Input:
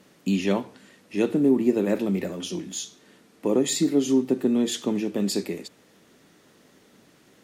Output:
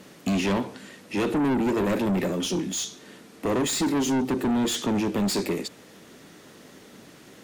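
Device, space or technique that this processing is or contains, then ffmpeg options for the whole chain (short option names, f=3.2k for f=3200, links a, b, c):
saturation between pre-emphasis and de-emphasis: -af "highshelf=f=4.4k:g=6.5,asoftclip=type=tanh:threshold=-29dB,highshelf=f=4.4k:g=-6.5,volume=8dB"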